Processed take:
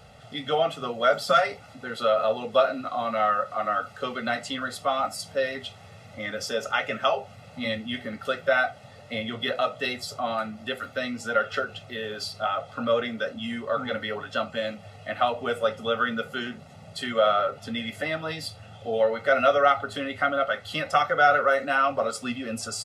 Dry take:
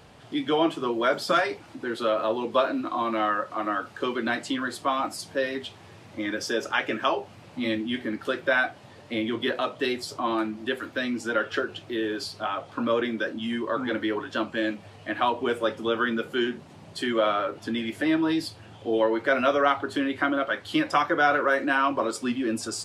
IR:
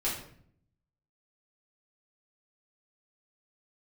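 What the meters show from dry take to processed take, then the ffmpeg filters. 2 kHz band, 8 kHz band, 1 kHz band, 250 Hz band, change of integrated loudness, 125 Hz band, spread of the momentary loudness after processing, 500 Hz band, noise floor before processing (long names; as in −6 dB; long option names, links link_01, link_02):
0.0 dB, +0.5 dB, +1.5 dB, −7.5 dB, +0.5 dB, +1.5 dB, 12 LU, +1.5 dB, −49 dBFS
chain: -af "aecho=1:1:1.5:0.95,volume=-2dB"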